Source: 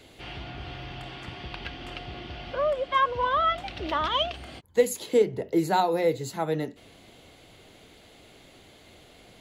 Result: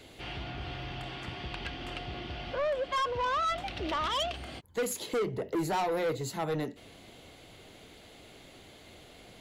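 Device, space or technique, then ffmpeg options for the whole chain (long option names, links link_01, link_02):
saturation between pre-emphasis and de-emphasis: -af "highshelf=frequency=12000:gain=9,asoftclip=type=tanh:threshold=-26.5dB,highshelf=frequency=12000:gain=-9"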